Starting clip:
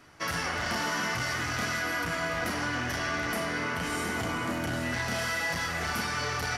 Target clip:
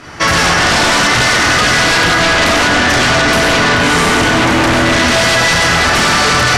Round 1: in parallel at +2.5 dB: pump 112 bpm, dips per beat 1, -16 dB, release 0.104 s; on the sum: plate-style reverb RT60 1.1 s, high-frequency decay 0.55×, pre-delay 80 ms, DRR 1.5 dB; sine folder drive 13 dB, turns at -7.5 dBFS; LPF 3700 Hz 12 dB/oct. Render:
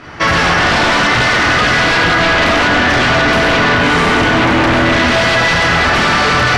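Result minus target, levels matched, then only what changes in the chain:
8000 Hz band -8.5 dB
change: LPF 8000 Hz 12 dB/oct

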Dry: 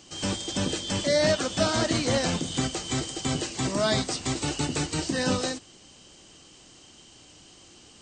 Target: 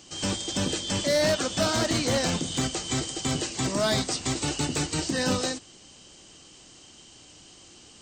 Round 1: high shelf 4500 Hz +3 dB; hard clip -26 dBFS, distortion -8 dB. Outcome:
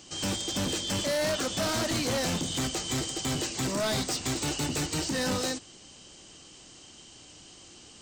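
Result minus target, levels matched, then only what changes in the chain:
hard clip: distortion +11 dB
change: hard clip -18.5 dBFS, distortion -19 dB

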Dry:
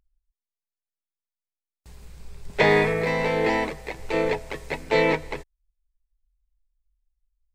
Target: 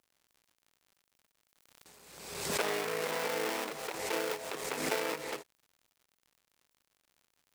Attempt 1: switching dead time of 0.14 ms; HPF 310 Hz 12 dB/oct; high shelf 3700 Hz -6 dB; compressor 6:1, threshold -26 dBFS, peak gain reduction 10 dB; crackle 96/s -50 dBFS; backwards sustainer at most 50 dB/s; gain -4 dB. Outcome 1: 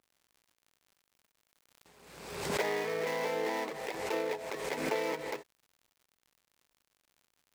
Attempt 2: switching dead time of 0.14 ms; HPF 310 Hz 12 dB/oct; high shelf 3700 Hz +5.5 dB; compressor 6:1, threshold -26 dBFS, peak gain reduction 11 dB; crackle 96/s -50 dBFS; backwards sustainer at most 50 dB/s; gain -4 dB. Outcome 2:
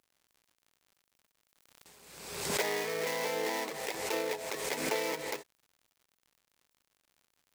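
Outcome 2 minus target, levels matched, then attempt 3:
switching dead time: distortion -7 dB
switching dead time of 0.33 ms; HPF 310 Hz 12 dB/oct; high shelf 3700 Hz +5.5 dB; compressor 6:1, threshold -26 dBFS, peak gain reduction 10 dB; crackle 96/s -50 dBFS; backwards sustainer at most 50 dB/s; gain -4 dB

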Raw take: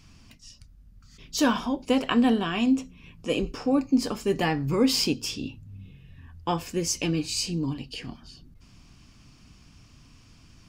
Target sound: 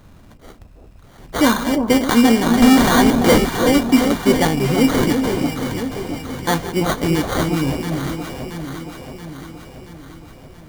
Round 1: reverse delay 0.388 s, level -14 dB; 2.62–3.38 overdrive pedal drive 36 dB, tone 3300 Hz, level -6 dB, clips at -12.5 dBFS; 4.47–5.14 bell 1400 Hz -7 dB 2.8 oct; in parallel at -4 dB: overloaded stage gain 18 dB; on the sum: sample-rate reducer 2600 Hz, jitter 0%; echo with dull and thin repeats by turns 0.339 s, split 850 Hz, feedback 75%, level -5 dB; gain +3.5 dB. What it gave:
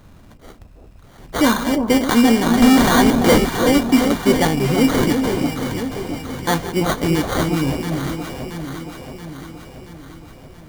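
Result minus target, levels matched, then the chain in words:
overloaded stage: distortion +25 dB
reverse delay 0.388 s, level -14 dB; 2.62–3.38 overdrive pedal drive 36 dB, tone 3300 Hz, level -6 dB, clips at -12.5 dBFS; 4.47–5.14 bell 1400 Hz -7 dB 2.8 oct; in parallel at -4 dB: overloaded stage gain 11.5 dB; on the sum: sample-rate reducer 2600 Hz, jitter 0%; echo with dull and thin repeats by turns 0.339 s, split 850 Hz, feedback 75%, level -5 dB; gain +3.5 dB

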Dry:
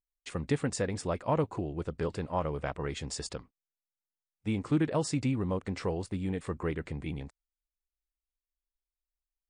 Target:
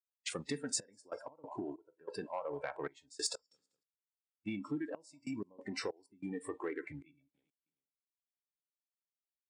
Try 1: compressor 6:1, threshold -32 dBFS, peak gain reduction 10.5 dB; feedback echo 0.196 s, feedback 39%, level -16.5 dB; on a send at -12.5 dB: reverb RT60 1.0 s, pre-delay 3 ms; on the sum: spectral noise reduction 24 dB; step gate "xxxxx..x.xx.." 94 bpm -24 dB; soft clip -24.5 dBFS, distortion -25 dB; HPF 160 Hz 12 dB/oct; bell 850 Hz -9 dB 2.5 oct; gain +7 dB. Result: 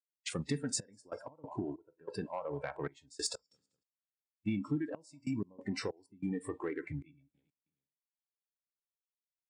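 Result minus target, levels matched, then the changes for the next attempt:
125 Hz band +7.5 dB
change: HPF 320 Hz 12 dB/oct

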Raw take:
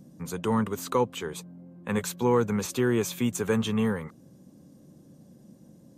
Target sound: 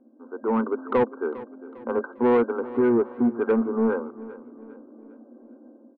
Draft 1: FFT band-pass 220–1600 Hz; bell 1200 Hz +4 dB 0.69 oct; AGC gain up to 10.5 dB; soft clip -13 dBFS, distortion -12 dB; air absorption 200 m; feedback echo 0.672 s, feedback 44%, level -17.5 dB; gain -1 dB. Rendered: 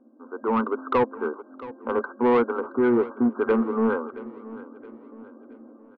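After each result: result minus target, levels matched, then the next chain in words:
echo 0.27 s late; 1000 Hz band +3.0 dB
FFT band-pass 220–1600 Hz; bell 1200 Hz +4 dB 0.69 oct; AGC gain up to 10.5 dB; soft clip -13 dBFS, distortion -12 dB; air absorption 200 m; feedback echo 0.402 s, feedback 44%, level -17.5 dB; gain -1 dB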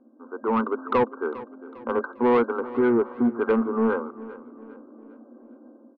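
1000 Hz band +3.0 dB
FFT band-pass 220–1600 Hz; bell 1200 Hz -3.5 dB 0.69 oct; AGC gain up to 10.5 dB; soft clip -13 dBFS, distortion -13 dB; air absorption 200 m; feedback echo 0.402 s, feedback 44%, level -17.5 dB; gain -1 dB

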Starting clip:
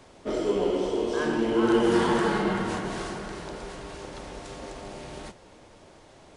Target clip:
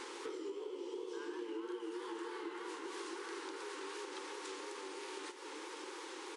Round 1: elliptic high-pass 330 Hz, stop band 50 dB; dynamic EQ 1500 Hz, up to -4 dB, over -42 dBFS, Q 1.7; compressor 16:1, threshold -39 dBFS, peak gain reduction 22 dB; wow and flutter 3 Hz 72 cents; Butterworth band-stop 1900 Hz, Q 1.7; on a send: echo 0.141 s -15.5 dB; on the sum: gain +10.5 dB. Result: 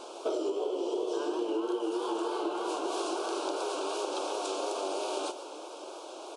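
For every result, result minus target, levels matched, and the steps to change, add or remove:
compressor: peak gain reduction -11 dB; 2000 Hz band -9.0 dB
change: compressor 16:1, threshold -50.5 dBFS, peak gain reduction 33 dB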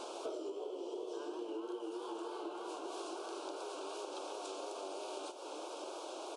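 2000 Hz band -8.5 dB
change: Butterworth band-stop 650 Hz, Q 1.7

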